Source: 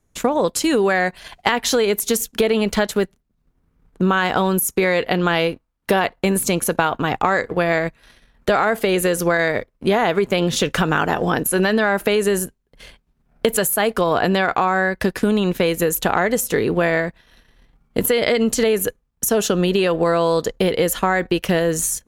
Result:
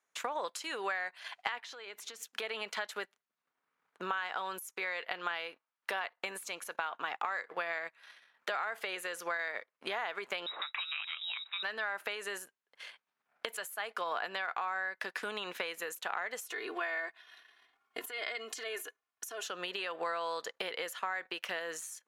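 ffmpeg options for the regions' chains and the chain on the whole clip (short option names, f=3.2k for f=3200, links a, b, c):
-filter_complex "[0:a]asettb=1/sr,asplit=3[a][b][c];[a]atrim=end=1.604[d];[b]atrim=start=1.6:end=2.23,asetpts=PTS-STARTPTS,afade=t=in:d=0.004:c=qsin,afade=t=out:st=0.626:d=0.004:c=qsin,equalizer=f=12k:t=o:w=1:g=-11.5,acompressor=threshold=-31dB:ratio=6:attack=3.2:release=140:knee=1:detection=peak,aeval=exprs='val(0)+0.00355*(sin(2*PI*60*n/s)+sin(2*PI*2*60*n/s)/2+sin(2*PI*3*60*n/s)/3+sin(2*PI*4*60*n/s)/4+sin(2*PI*5*60*n/s)/5)':c=same[e];[c]atrim=start=2.226[f];[d][e]acrossfade=d=0.004:c1=hsin:c2=qsin[g];[g][f]acrossfade=d=0.004:c1=qsin:c2=hsin,asettb=1/sr,asplit=3[h][i][j];[h]atrim=end=10.464[k];[i]atrim=start=10.46:end=11.63,asetpts=PTS-STARTPTS,afade=t=in:d=0.004:c=qsin,afade=t=out:st=1.166:d=0.004:c=qsin,highpass=140,equalizer=f=570:w=0.78:g=-13.5,lowpass=f=3.4k:t=q:w=0.5098,lowpass=f=3.4k:t=q:w=0.6013,lowpass=f=3.4k:t=q:w=0.9,lowpass=f=3.4k:t=q:w=2.563,afreqshift=-4000[l];[j]atrim=start=11.626[m];[k][l]acrossfade=d=0.004:c1=hsin:c2=qsin[n];[n][m]acrossfade=d=0.004:c1=qsin:c2=hsin,asettb=1/sr,asplit=3[o][p][q];[o]atrim=end=16.414[r];[p]atrim=start=16.41:end=19.44,asetpts=PTS-STARTPTS,afade=t=in:d=0.004:c=qsin,afade=t=out:st=3.026:d=0.004:c=qsin,acompressor=threshold=-19dB:ratio=6:attack=3.2:release=140:knee=1:detection=peak,aecho=1:1:2.8:0.92,atrim=end_sample=133623[s];[q]atrim=start=19.436[t];[r][s]acrossfade=d=0.004:c1=hsin:c2=qsin[u];[u][t]acrossfade=d=0.004:c1=qsin:c2=hsin,highpass=1.2k,acompressor=threshold=-31dB:ratio=6,lowpass=f=2.1k:p=1"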